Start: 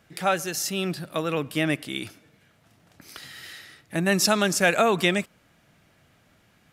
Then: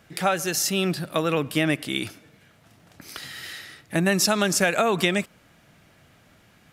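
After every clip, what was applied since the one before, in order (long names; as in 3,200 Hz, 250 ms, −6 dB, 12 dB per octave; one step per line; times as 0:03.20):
downward compressor, threshold −22 dBFS, peak gain reduction 7.5 dB
level +4.5 dB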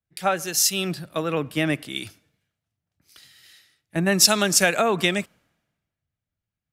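multiband upward and downward expander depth 100%
level −1.5 dB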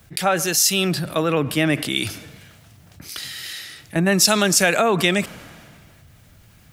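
envelope flattener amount 50%
level −1 dB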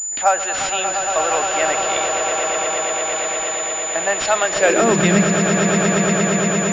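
echo that builds up and dies away 116 ms, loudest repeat 8, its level −9 dB
high-pass filter sweep 720 Hz → 140 Hz, 0:04.51–0:05.06
switching amplifier with a slow clock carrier 7,000 Hz
level −1 dB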